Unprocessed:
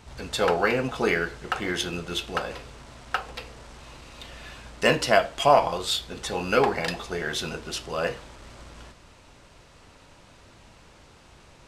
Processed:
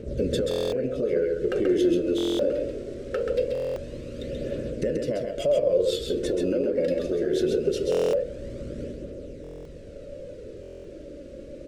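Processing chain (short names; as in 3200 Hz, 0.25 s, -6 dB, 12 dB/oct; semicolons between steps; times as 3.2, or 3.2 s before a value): EQ curve 110 Hz 0 dB, 570 Hz +14 dB, 820 Hz -29 dB, 1500 Hz -12 dB; compressor 4:1, threshold -26 dBFS, peak gain reduction 17.5 dB; limiter -22.5 dBFS, peak gain reduction 8 dB; phaser 0.22 Hz, delay 3.7 ms, feedback 44%; echo 0.133 s -4.5 dB; stuck buffer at 0.49/2.16/3.53/7.9/9.42/10.61, samples 1024, times 9; gain +5 dB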